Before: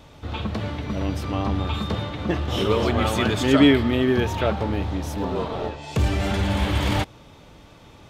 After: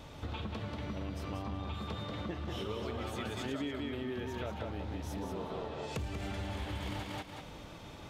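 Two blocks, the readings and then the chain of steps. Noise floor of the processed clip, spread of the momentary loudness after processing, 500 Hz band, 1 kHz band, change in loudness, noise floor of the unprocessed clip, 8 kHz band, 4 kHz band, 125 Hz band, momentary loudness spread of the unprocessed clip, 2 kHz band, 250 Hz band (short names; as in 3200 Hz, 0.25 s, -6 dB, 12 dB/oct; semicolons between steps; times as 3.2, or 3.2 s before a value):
-49 dBFS, 4 LU, -16.0 dB, -14.5 dB, -16.5 dB, -48 dBFS, -14.5 dB, -15.5 dB, -15.5 dB, 11 LU, -16.0 dB, -17.5 dB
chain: on a send: thinning echo 0.186 s, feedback 20%, high-pass 160 Hz, level -4 dB; on the sum: compressor 6:1, threshold -35 dBFS, peak gain reduction 22 dB; gain -2 dB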